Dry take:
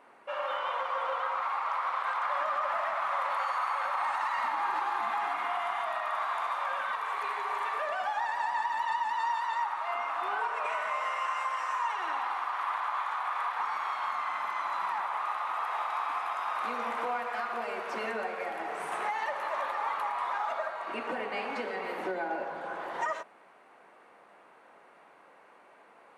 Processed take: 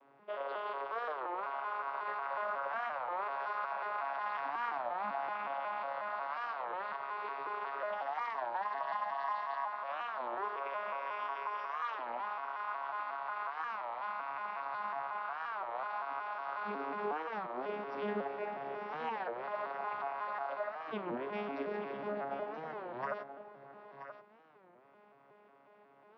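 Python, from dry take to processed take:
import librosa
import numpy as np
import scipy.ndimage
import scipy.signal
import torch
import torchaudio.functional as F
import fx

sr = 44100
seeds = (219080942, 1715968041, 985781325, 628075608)

p1 = fx.vocoder_arp(x, sr, chord='bare fifth', root=49, every_ms=182)
p2 = scipy.signal.sosfilt(scipy.signal.cheby1(10, 1.0, 5700.0, 'lowpass', fs=sr, output='sos'), p1)
p3 = p2 + fx.echo_single(p2, sr, ms=979, db=-10.5, dry=0)
p4 = fx.record_warp(p3, sr, rpm=33.33, depth_cents=250.0)
y = p4 * librosa.db_to_amplitude(-5.5)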